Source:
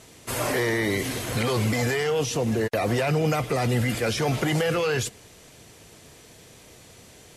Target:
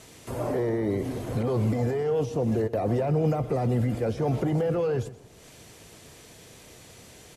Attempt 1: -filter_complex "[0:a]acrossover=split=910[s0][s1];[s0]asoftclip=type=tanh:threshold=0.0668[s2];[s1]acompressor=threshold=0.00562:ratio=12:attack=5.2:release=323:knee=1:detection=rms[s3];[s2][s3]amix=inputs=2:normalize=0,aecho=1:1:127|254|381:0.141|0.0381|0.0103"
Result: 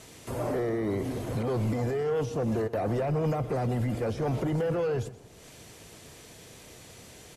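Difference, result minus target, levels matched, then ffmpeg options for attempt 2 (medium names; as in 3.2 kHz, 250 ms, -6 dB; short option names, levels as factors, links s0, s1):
saturation: distortion +16 dB
-filter_complex "[0:a]acrossover=split=910[s0][s1];[s0]asoftclip=type=tanh:threshold=0.237[s2];[s1]acompressor=threshold=0.00562:ratio=12:attack=5.2:release=323:knee=1:detection=rms[s3];[s2][s3]amix=inputs=2:normalize=0,aecho=1:1:127|254|381:0.141|0.0381|0.0103"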